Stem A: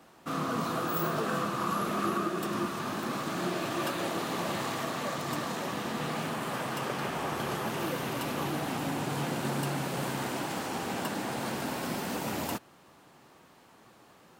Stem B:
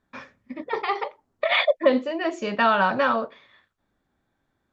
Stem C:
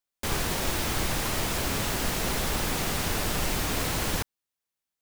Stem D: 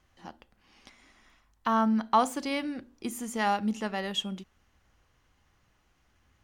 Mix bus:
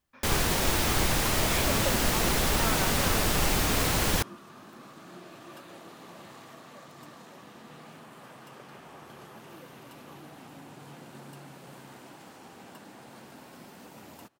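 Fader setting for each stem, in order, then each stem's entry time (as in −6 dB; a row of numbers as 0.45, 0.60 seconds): −15.0, −15.5, +2.5, −16.0 decibels; 1.70, 0.00, 0.00, 0.00 seconds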